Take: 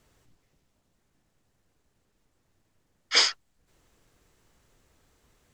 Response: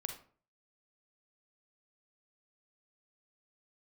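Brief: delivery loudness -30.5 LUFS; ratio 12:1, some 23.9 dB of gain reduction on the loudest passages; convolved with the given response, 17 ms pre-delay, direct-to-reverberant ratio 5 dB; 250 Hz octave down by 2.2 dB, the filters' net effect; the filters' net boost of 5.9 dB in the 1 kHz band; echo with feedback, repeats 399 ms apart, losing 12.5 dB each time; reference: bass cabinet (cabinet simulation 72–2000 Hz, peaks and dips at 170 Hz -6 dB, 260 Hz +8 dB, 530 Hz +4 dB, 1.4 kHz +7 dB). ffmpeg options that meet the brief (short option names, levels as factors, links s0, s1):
-filter_complex "[0:a]equalizer=f=250:t=o:g=-7.5,equalizer=f=1000:t=o:g=3.5,acompressor=threshold=0.01:ratio=12,aecho=1:1:399|798|1197:0.237|0.0569|0.0137,asplit=2[s0][s1];[1:a]atrim=start_sample=2205,adelay=17[s2];[s1][s2]afir=irnorm=-1:irlink=0,volume=0.631[s3];[s0][s3]amix=inputs=2:normalize=0,highpass=f=72:w=0.5412,highpass=f=72:w=1.3066,equalizer=f=170:t=q:w=4:g=-6,equalizer=f=260:t=q:w=4:g=8,equalizer=f=530:t=q:w=4:g=4,equalizer=f=1400:t=q:w=4:g=7,lowpass=f=2000:w=0.5412,lowpass=f=2000:w=1.3066,volume=9.44"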